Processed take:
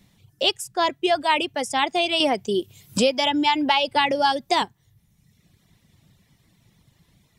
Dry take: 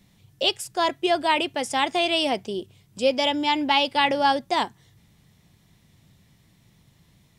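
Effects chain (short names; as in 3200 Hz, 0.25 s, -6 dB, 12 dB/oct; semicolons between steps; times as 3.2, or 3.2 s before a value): reverb removal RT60 1 s; 2.2–4.62 three-band squash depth 100%; gain +1.5 dB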